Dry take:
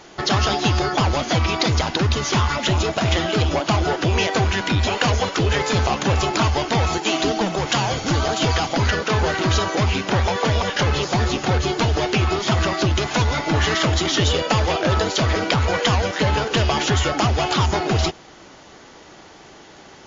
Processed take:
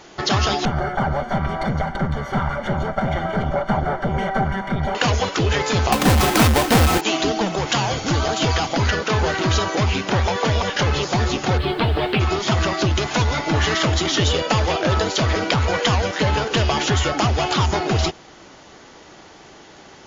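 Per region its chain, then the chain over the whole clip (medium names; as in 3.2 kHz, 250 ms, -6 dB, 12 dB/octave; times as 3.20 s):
0.65–4.95 s: comb filter that takes the minimum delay 5.1 ms + Savitzky-Golay filter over 41 samples + comb 1.4 ms, depth 51%
5.92–7.01 s: square wave that keeps the level + comb 3.9 ms, depth 36%
11.57–12.19 s: steep low-pass 4.2 kHz 48 dB/octave + added noise pink -52 dBFS
whole clip: none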